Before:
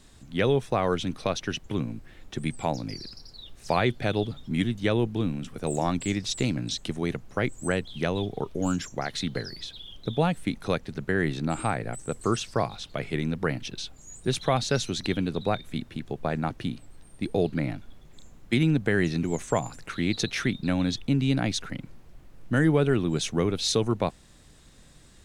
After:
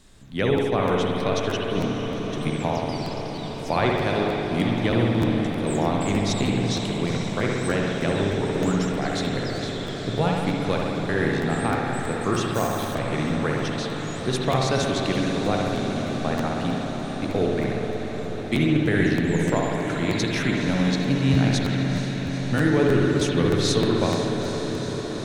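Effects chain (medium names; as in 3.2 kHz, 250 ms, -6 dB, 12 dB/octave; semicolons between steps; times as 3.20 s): on a send: echo that smears into a reverb 461 ms, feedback 80%, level -8.5 dB; on the sum: spring tank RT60 1.8 s, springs 60 ms, chirp 25 ms, DRR -0.5 dB; 12.54–12.95 s: careless resampling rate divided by 6×, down none, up hold; crackling interface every 0.31 s, samples 512, repeat, from 0.56 s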